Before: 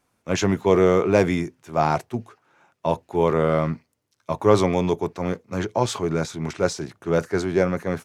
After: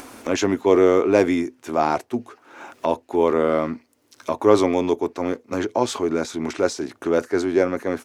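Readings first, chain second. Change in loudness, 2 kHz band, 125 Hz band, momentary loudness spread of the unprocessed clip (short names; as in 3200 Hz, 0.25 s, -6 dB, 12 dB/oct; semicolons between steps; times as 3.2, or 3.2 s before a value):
+1.0 dB, +0.5 dB, -9.0 dB, 11 LU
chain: resonant low shelf 210 Hz -6.5 dB, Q 3; upward compressor, threshold -19 dBFS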